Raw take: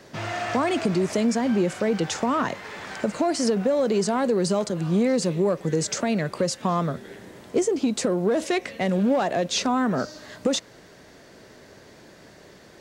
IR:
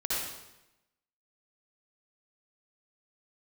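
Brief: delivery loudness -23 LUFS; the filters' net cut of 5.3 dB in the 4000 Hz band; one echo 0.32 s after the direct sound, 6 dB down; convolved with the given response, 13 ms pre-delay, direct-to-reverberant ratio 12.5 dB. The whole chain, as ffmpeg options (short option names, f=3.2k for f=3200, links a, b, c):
-filter_complex "[0:a]equalizer=f=4k:t=o:g=-7,aecho=1:1:320:0.501,asplit=2[a][b];[1:a]atrim=start_sample=2205,adelay=13[c];[b][c]afir=irnorm=-1:irlink=0,volume=-20dB[d];[a][d]amix=inputs=2:normalize=0,volume=0.5dB"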